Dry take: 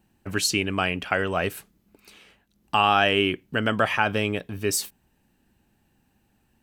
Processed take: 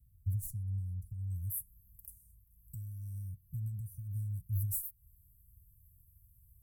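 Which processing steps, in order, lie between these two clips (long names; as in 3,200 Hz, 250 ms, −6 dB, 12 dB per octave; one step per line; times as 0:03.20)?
stylus tracing distortion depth 0.023 ms
parametric band 14,000 Hz +2.5 dB 1.7 octaves, from 0:01.30 +14 dB
downward compressor 3 to 1, threshold −31 dBFS, peak gain reduction 14 dB
inverse Chebyshev band-stop filter 400–3,200 Hz, stop band 70 dB
low-shelf EQ 330 Hz +11 dB
notch comb filter 300 Hz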